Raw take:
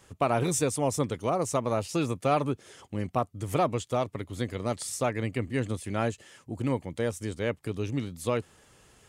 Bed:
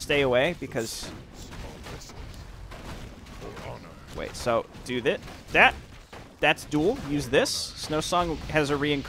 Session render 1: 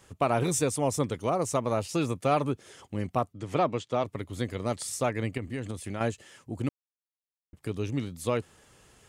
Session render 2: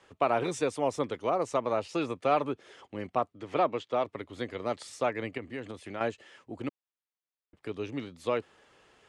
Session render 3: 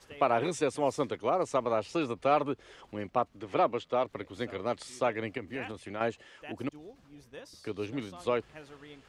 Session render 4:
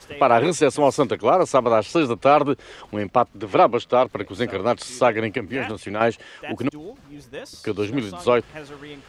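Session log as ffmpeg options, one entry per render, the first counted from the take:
-filter_complex "[0:a]asplit=3[a][b][c];[a]afade=t=out:st=3.32:d=0.02[d];[b]highpass=130,lowpass=5k,afade=t=in:st=3.32:d=0.02,afade=t=out:st=4.03:d=0.02[e];[c]afade=t=in:st=4.03:d=0.02[f];[d][e][f]amix=inputs=3:normalize=0,asettb=1/sr,asplit=3[g][h][i];[g]atrim=end=5.374[j];[h]atrim=start=5.37:end=6.01,asetpts=PTS-STARTPTS,afade=t=in:d=0.004:c=qsin,afade=t=out:st=0.636:d=0.004:c=qsin,acompressor=threshold=-29dB:ratio=6:attack=3.2:release=140:knee=1:detection=peak[k];[i]atrim=start=6.006[l];[j][k]acrossfade=d=0.004:c1=hsin:c2=qsin[m];[m][l]acrossfade=d=0.004:c1=qsin:c2=hsin,asplit=3[n][o][p];[n]atrim=end=6.69,asetpts=PTS-STARTPTS,afade=t=out:st=6.686:d=0.004:c=hsin[q];[o]atrim=start=6.69:end=7.53,asetpts=PTS-STARTPTS,volume=0[r];[p]atrim=start=7.53,asetpts=PTS-STARTPTS,afade=t=in:d=0.004:c=hsin[s];[q][r][s]concat=n=3:v=0:a=1"
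-filter_complex "[0:a]lowpass=f=11k:w=0.5412,lowpass=f=11k:w=1.3066,acrossover=split=270 4500:gain=0.224 1 0.158[a][b][c];[a][b][c]amix=inputs=3:normalize=0"
-filter_complex "[1:a]volume=-25dB[a];[0:a][a]amix=inputs=2:normalize=0"
-af "volume=11.5dB,alimiter=limit=-3dB:level=0:latency=1"

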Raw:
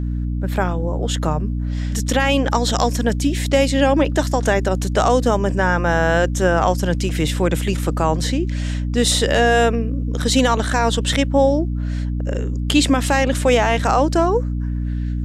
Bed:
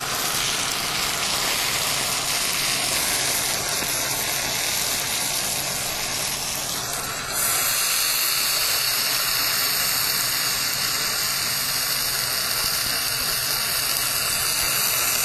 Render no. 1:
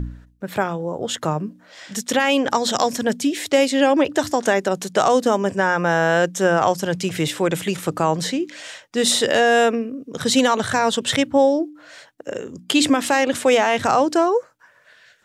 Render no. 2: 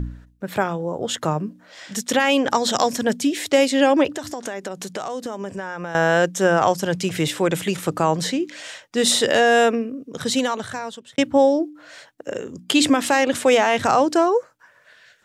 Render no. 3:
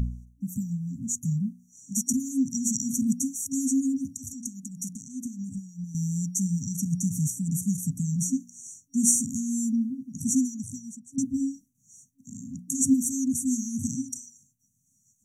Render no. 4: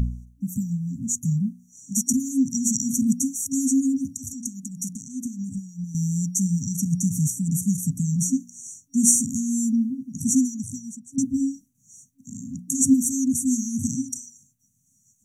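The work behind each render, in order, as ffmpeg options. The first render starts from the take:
-af "bandreject=f=60:t=h:w=4,bandreject=f=120:t=h:w=4,bandreject=f=180:t=h:w=4,bandreject=f=240:t=h:w=4,bandreject=f=300:t=h:w=4"
-filter_complex "[0:a]asettb=1/sr,asplit=3[a][b][c];[a]atrim=end=4.094[d];[b]atrim=start=4.09:end=5.95,asetpts=PTS-STARTPTS,afade=t=in:d=0.004:c=qsin,afade=t=out:st=1.856:d=0.004:c=qsin,acompressor=threshold=-27dB:ratio=4:attack=3.2:release=140:knee=1:detection=peak[e];[c]atrim=start=5.946[f];[d][e]acrossfade=d=0.004:c1=hsin:c2=qsin[g];[g][f]acrossfade=d=0.004:c1=qsin:c2=hsin,asplit=2[h][i];[h]atrim=end=11.18,asetpts=PTS-STARTPTS,afade=t=out:st=9.84:d=1.34[j];[i]atrim=start=11.18,asetpts=PTS-STARTPTS,afade=t=in:d=0.004:c=hsin[k];[j][k]concat=n=2:v=0:a=1"
-af "afftfilt=real='re*(1-between(b*sr/4096,270,5700))':imag='im*(1-between(b*sr/4096,270,5700))':win_size=4096:overlap=0.75,equalizer=f=3.2k:t=o:w=0.94:g=12"
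-af "volume=4dB"

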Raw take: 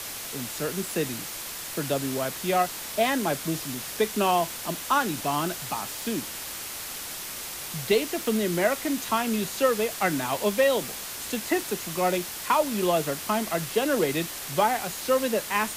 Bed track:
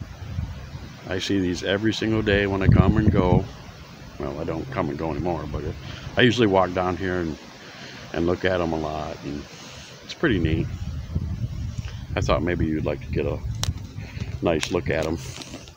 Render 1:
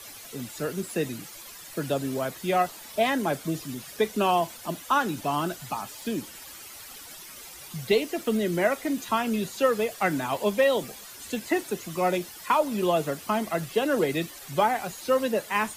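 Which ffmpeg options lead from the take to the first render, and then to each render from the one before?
-af "afftdn=nr=12:nf=-37"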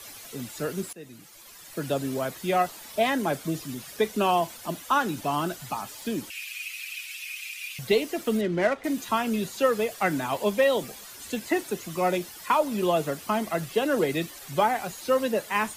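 -filter_complex "[0:a]asettb=1/sr,asplit=3[a][b][c];[a]atrim=end=6.304[d];[b]atrim=start=6.3:end=7.79,asetpts=PTS-STARTPTS,afade=t=in:d=0.004:c=qsin,afade=t=out:st=1.486:d=0.004:c=qsin,highpass=f=2.5k:t=q:w=13[e];[c]atrim=start=7.786[f];[d][e]acrossfade=d=0.004:c1=hsin:c2=qsin[g];[g][f]acrossfade=d=0.004:c1=qsin:c2=hsin,asettb=1/sr,asplit=3[h][i][j];[h]atrim=end=8.414[k];[i]atrim=start=8.41:end=8.84,asetpts=PTS-STARTPTS,afade=t=in:d=0.004:c=qsin,afade=t=out:st=0.426:d=0.004:c=qsin,adynamicsmooth=sensitivity=4.5:basefreq=2k[l];[j]atrim=start=8.836[m];[k][l]acrossfade=d=0.004:c1=hsin:c2=qsin[n];[n][m]acrossfade=d=0.004:c1=qsin:c2=hsin,asplit=2[o][p];[o]atrim=end=0.93,asetpts=PTS-STARTPTS,afade=t=out:st=0.926:d=0.004:c=hsin:silence=0.0891251[q];[p]atrim=start=0.93,asetpts=PTS-STARTPTS,afade=t=in:d=1.02:silence=0.0891251[r];[q][r]concat=n=2:v=0:a=1"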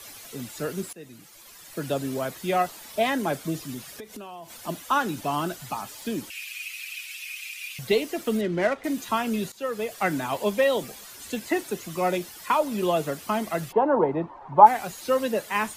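-filter_complex "[0:a]asettb=1/sr,asplit=3[a][b][c];[a]atrim=end=3.964[d];[b]atrim=start=3.96:end=4.56,asetpts=PTS-STARTPTS,afade=t=in:d=0.004:c=qsin,afade=t=out:st=0.596:d=0.004:c=qsin,acompressor=threshold=-36dB:ratio=16:attack=3.2:release=140:knee=1:detection=peak[e];[c]atrim=start=4.556[f];[d][e]acrossfade=d=0.004:c1=hsin:c2=qsin[g];[g][f]acrossfade=d=0.004:c1=qsin:c2=hsin,asplit=3[h][i][j];[h]afade=t=out:st=13.71:d=0.02[k];[i]lowpass=f=930:t=q:w=9,afade=t=in:st=13.71:d=0.02,afade=t=out:st=14.65:d=0.02[l];[j]afade=t=in:st=14.65:d=0.02[m];[k][l][m]amix=inputs=3:normalize=0,asplit=2[n][o];[n]atrim=end=9.52,asetpts=PTS-STARTPTS,afade=t=out:st=9.516:d=0.004:c=hsin:silence=0.177828[p];[o]atrim=start=9.52,asetpts=PTS-STARTPTS,afade=t=in:d=0.49:silence=0.177828[q];[p][q]concat=n=2:v=0:a=1"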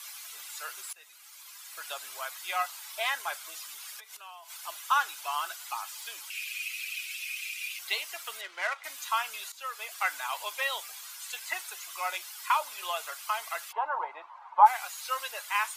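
-af "highpass=f=970:w=0.5412,highpass=f=970:w=1.3066,bandreject=f=1.8k:w=13"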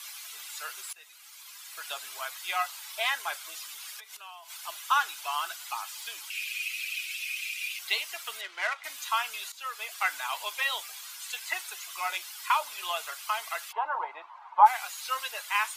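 -af "equalizer=f=3.2k:t=o:w=1.5:g=3,bandreject=f=540:w=13"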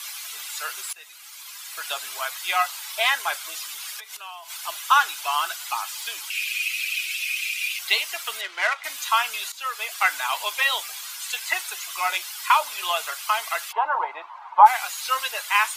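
-af "volume=7.5dB,alimiter=limit=-2dB:level=0:latency=1"

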